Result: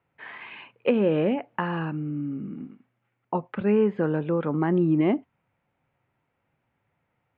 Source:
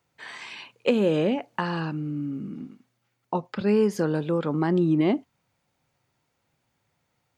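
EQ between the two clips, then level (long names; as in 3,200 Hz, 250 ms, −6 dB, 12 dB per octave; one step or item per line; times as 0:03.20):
inverse Chebyshev low-pass filter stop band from 5,300 Hz, stop band 40 dB
0.0 dB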